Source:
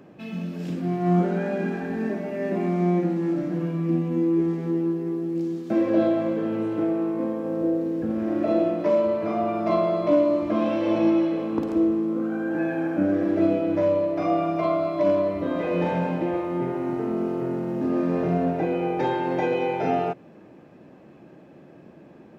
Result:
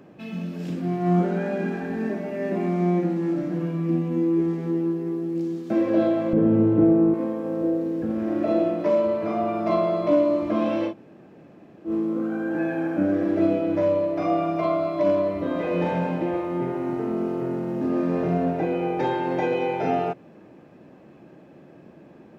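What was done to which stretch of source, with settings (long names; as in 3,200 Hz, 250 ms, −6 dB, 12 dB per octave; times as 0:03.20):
0:06.33–0:07.14: spectral tilt −4.5 dB per octave
0:10.89–0:11.89: fill with room tone, crossfade 0.10 s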